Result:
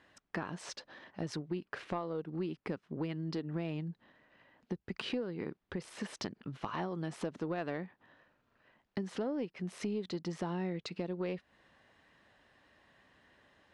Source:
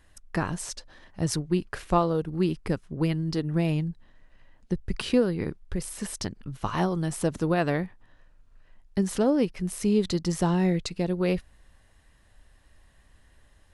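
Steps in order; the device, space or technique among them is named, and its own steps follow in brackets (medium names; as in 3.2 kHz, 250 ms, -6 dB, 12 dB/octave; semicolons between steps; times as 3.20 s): AM radio (band-pass 200–3700 Hz; compression 4:1, threshold -36 dBFS, peak gain reduction 16 dB; saturation -25 dBFS, distortion -24 dB); trim +1 dB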